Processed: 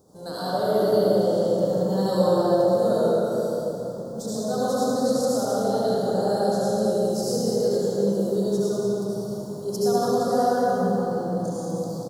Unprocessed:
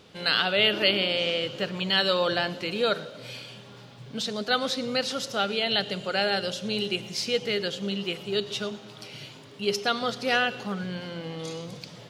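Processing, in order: Chebyshev band-stop 770–7400 Hz, order 2; treble shelf 9.6 kHz +11 dB; delay 192 ms -7.5 dB; reverberation RT60 3.6 s, pre-delay 65 ms, DRR -9.5 dB; trim -3 dB

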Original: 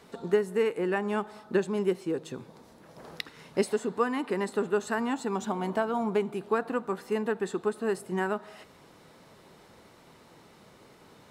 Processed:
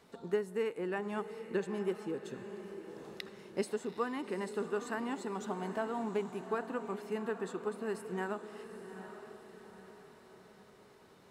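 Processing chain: echo that smears into a reverb 820 ms, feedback 47%, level -10 dB; trim -8 dB

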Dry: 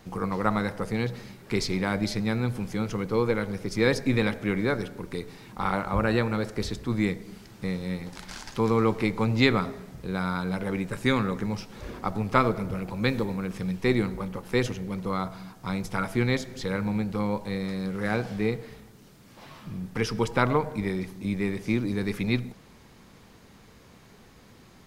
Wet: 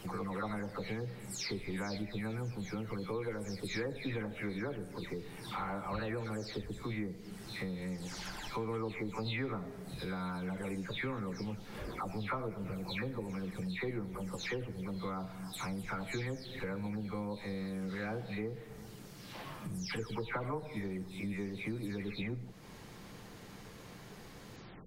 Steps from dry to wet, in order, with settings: delay that grows with frequency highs early, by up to 307 ms; compression 3:1, threshold -43 dBFS, peak gain reduction 18 dB; trim +2.5 dB

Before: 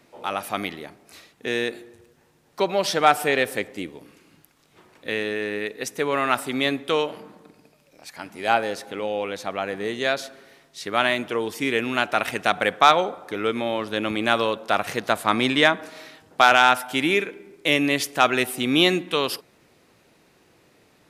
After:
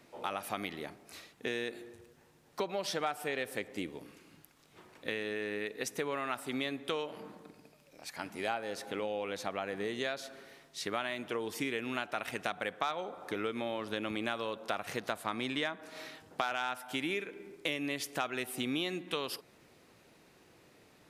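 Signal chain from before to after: compression 5:1, threshold -29 dBFS, peak gain reduction 17.5 dB; trim -3.5 dB

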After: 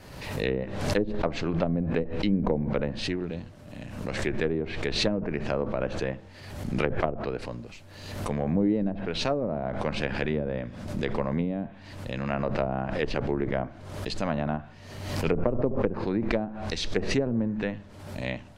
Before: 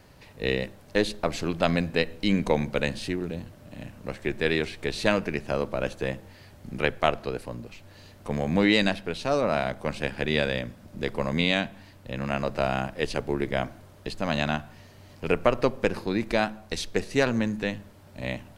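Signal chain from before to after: low-pass that closes with the level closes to 450 Hz, closed at -19.5 dBFS; dynamic bell 7.2 kHz, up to +4 dB, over -55 dBFS, Q 0.78; swell ahead of each attack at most 51 dB/s; trim -1 dB

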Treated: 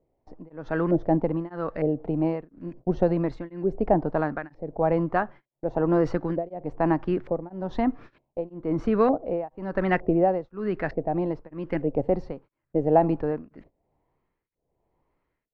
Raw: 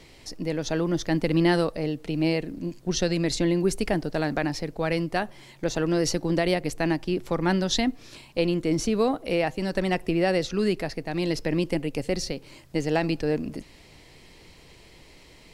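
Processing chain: gate -41 dBFS, range -23 dB; LFO low-pass saw up 1.1 Hz 580–1700 Hz; tremolo of two beating tones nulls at 1 Hz; trim +1.5 dB

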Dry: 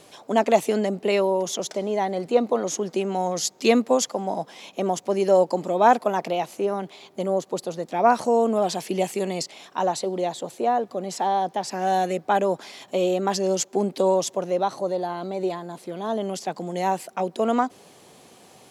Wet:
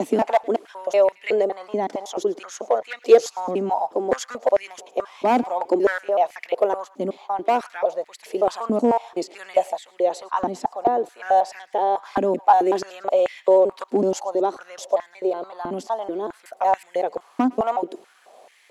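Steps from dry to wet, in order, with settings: slices played last to first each 187 ms, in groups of 4; treble shelf 2.3 kHz -8 dB; overload inside the chain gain 14 dB; thinning echo 109 ms, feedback 50%, high-pass 930 Hz, level -20.5 dB; step-sequenced high-pass 4.6 Hz 260–2000 Hz; trim -1 dB

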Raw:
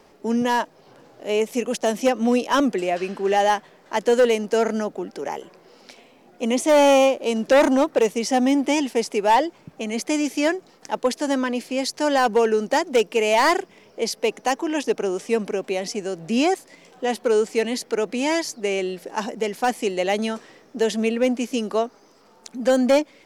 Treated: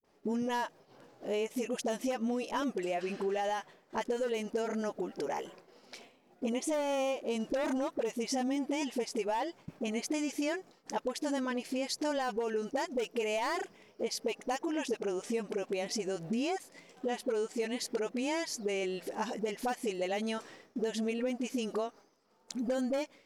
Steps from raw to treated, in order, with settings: phase dispersion highs, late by 45 ms, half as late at 460 Hz; peak limiter -11.5 dBFS, peak gain reduction 6 dB; compression 4:1, threshold -29 dBFS, peak gain reduction 11.5 dB; expander -44 dBFS; trim -3 dB

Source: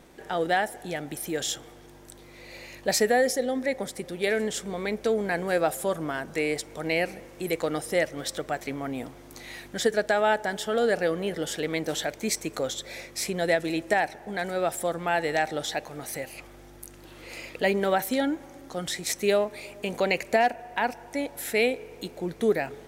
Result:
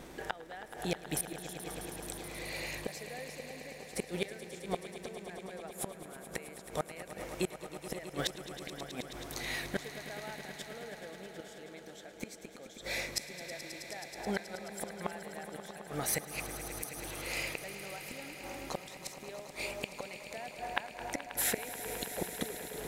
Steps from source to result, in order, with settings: inverted gate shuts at -22 dBFS, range -27 dB; dynamic bell 280 Hz, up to -5 dB, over -53 dBFS, Q 1; echo with a slow build-up 107 ms, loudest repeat 5, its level -14 dB; trim +4 dB

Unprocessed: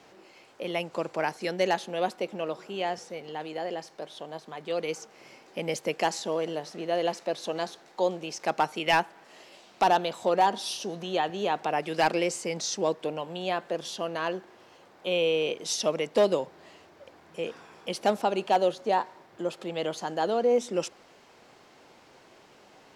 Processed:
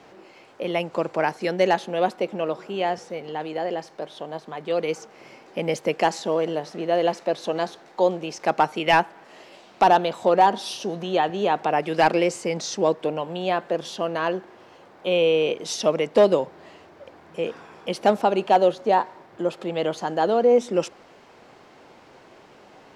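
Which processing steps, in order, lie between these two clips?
treble shelf 3.3 kHz -8.5 dB; trim +6.5 dB

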